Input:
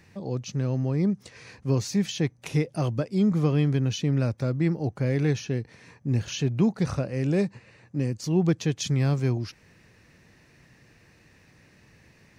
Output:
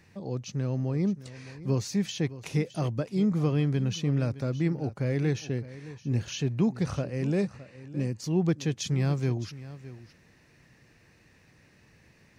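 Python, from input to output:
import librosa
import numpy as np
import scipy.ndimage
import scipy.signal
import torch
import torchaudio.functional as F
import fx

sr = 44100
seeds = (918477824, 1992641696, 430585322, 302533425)

y = x + 10.0 ** (-16.0 / 20.0) * np.pad(x, (int(614 * sr / 1000.0), 0))[:len(x)]
y = y * 10.0 ** (-3.0 / 20.0)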